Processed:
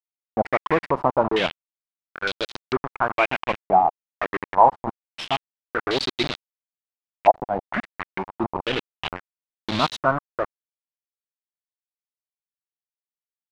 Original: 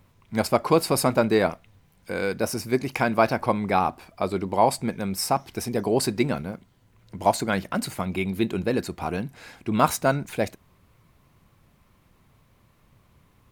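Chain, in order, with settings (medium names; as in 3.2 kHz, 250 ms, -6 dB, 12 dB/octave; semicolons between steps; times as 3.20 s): spectral noise reduction 28 dB; bit crusher 4-bit; step-sequenced low-pass 2.2 Hz 750–3900 Hz; trim -3 dB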